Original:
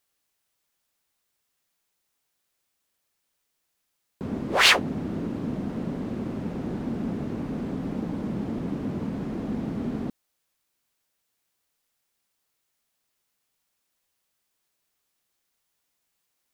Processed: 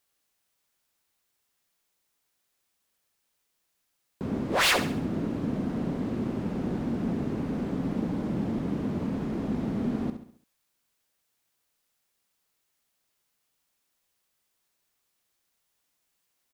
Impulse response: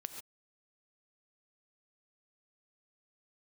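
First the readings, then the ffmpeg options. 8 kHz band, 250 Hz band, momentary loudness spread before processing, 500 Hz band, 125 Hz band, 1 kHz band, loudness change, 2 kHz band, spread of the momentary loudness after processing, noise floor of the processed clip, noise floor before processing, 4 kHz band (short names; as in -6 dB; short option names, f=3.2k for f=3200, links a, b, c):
-2.5 dB, +0.5 dB, 13 LU, 0.0 dB, +0.5 dB, -2.5 dB, -2.0 dB, -5.0 dB, 8 LU, -77 dBFS, -78 dBFS, -6.5 dB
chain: -af "asoftclip=type=hard:threshold=-20.5dB,aecho=1:1:68|136|204|272|340:0.316|0.139|0.0612|0.0269|0.0119"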